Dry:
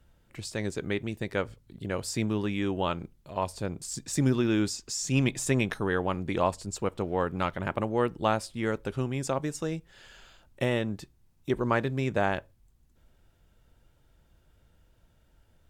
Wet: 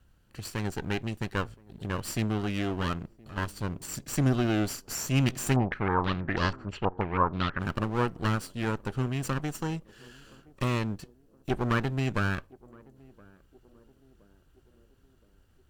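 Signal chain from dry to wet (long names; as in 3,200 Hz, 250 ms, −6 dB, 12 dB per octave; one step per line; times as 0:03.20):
lower of the sound and its delayed copy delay 0.67 ms
feedback echo with a band-pass in the loop 1,020 ms, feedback 56%, band-pass 380 Hz, level −22 dB
0:05.56–0:07.59: low-pass on a step sequencer 6.2 Hz 790–4,900 Hz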